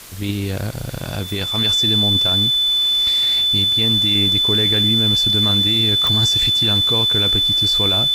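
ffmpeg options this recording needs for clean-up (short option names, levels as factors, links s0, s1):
-af "adeclick=t=4,bandreject=f=3500:w=30,afwtdn=0.013"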